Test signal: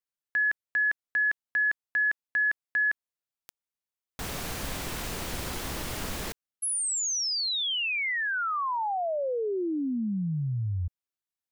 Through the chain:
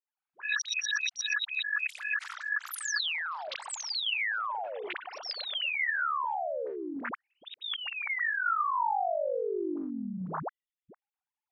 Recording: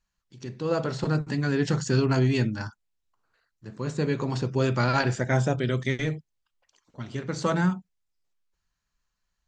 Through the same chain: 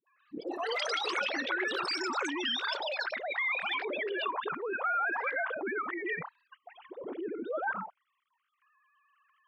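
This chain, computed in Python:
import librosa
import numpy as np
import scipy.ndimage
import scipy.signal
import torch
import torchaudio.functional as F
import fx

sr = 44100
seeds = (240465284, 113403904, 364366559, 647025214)

y = fx.sine_speech(x, sr)
y = fx.env_lowpass_down(y, sr, base_hz=2400.0, full_db=-22.0)
y = fx.auto_swell(y, sr, attack_ms=171.0)
y = fx.high_shelf(y, sr, hz=2900.0, db=11.5)
y = fx.level_steps(y, sr, step_db=9)
y = fx.dispersion(y, sr, late='highs', ms=72.0, hz=450.0)
y = fx.auto_wah(y, sr, base_hz=390.0, top_hz=1200.0, q=3.0, full_db=-29.0, direction='up')
y = fx.echo_pitch(y, sr, ms=148, semitones=7, count=3, db_per_echo=-3.0)
y = fx.env_flatten(y, sr, amount_pct=70)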